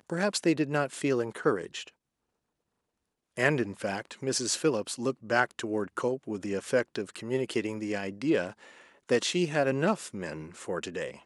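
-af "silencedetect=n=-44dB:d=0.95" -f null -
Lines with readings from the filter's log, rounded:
silence_start: 1.89
silence_end: 3.37 | silence_duration: 1.49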